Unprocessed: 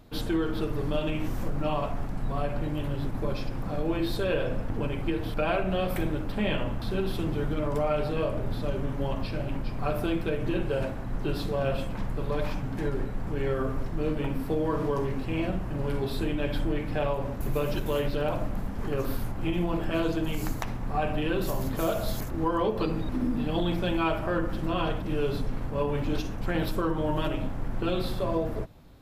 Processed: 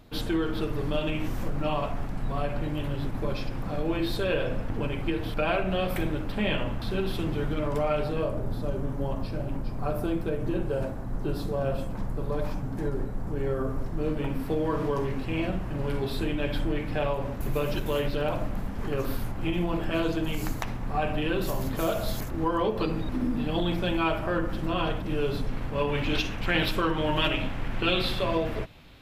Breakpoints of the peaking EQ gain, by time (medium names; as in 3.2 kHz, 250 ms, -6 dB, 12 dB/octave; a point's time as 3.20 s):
peaking EQ 2.7 kHz 1.6 oct
7.92 s +3 dB
8.41 s -8 dB
13.64 s -8 dB
14.49 s +2.5 dB
25.34 s +2.5 dB
26.13 s +14 dB